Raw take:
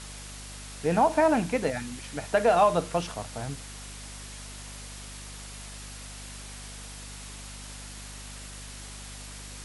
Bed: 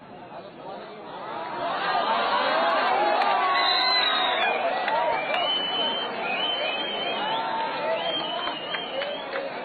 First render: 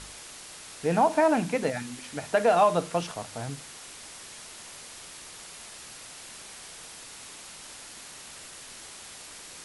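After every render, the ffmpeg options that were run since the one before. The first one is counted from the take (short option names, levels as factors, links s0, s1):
-af "bandreject=f=50:t=h:w=4,bandreject=f=100:t=h:w=4,bandreject=f=150:t=h:w=4,bandreject=f=200:t=h:w=4,bandreject=f=250:t=h:w=4"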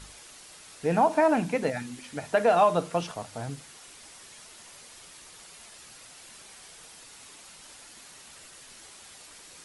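-af "afftdn=nr=6:nf=-45"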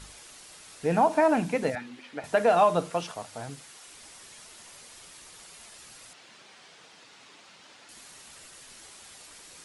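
-filter_complex "[0:a]asettb=1/sr,asplit=3[s0][s1][s2];[s0]atrim=end=1.754[s3];[s1]atrim=start=1.75:end=2.24,asetpts=PTS-STARTPTS,afade=t=in:d=0.004:c=qsin,afade=t=out:st=0.486:d=0.004:c=qsin,acrossover=split=240 4300:gain=0.178 1 0.112[s4][s5][s6];[s4][s5][s6]amix=inputs=3:normalize=0[s7];[s2]atrim=start=2.236[s8];[s3][s7]acrossfade=d=0.004:c1=hsin:c2=qsin[s9];[s9][s8]acrossfade=d=0.004:c1=qsin:c2=hsin,asettb=1/sr,asplit=3[s10][s11][s12];[s10]atrim=end=2.914[s13];[s11]atrim=start=2.91:end=3.92,asetpts=PTS-STARTPTS,afade=t=in:d=0.004:c=qsin,afade=t=out:st=1.006:d=0.004:c=qsin,lowshelf=f=280:g=-7[s14];[s12]atrim=start=3.916[s15];[s13][s14]acrossfade=d=0.004:c1=hsin:c2=qsin[s16];[s16][s15]acrossfade=d=0.004:c1=qsin:c2=hsin,asettb=1/sr,asplit=3[s17][s18][s19];[s17]atrim=end=6.134[s20];[s18]atrim=start=6.13:end=7.89,asetpts=PTS-STARTPTS,afade=t=in:d=0.004:c=qsin,afade=t=out:st=1.756:d=0.004:c=qsin,highpass=140,lowpass=4500[s21];[s19]atrim=start=7.886[s22];[s20][s21]acrossfade=d=0.004:c1=hsin:c2=qsin[s23];[s23][s22]acrossfade=d=0.004:c1=qsin:c2=hsin"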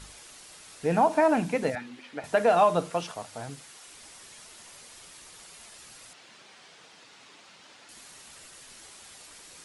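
-af anull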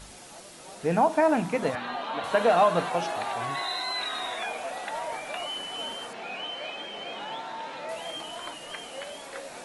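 -filter_complex "[1:a]volume=0.335[s0];[0:a][s0]amix=inputs=2:normalize=0"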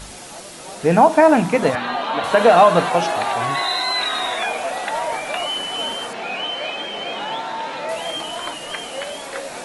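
-af "volume=3.16,alimiter=limit=0.794:level=0:latency=1"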